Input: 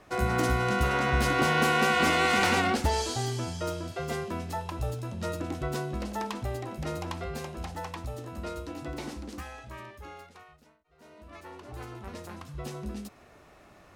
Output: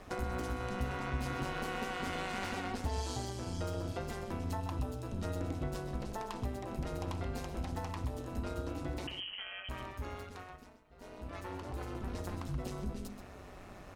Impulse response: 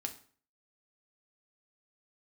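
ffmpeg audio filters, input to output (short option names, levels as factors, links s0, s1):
-filter_complex "[0:a]asettb=1/sr,asplit=3[s0][s1][s2];[s0]atrim=end=9.074[s3];[s1]atrim=start=9.07:end=9.69,asetpts=PTS-STARTPTS,afade=t=in:d=0.004:c=qsin,afade=t=out:st=0.616:d=0.004:c=qsin,lowpass=f=2700:t=q:w=0.5098,lowpass=f=2700:t=q:w=0.6013,lowpass=f=2700:t=q:w=0.9,lowpass=f=2700:t=q:w=2.563,afreqshift=-3200[s4];[s2]atrim=start=9.686[s5];[s3][s4]acrossfade=d=0.004:c1=hsin:c2=qsin[s6];[s6][s5]acrossfade=d=0.004:c1=qsin:c2=hsin,acompressor=threshold=0.00794:ratio=4,asplit=2[s7][s8];[s8]adelay=128.3,volume=0.355,highshelf=f=4000:g=-2.89[s9];[s7][s9]amix=inputs=2:normalize=0,tremolo=f=190:d=0.71,asplit=2[s10][s11];[s11]aemphasis=mode=reproduction:type=riaa[s12];[1:a]atrim=start_sample=2205,lowpass=1900[s13];[s12][s13]afir=irnorm=-1:irlink=0,volume=0.282[s14];[s10][s14]amix=inputs=2:normalize=0,volume=1.78"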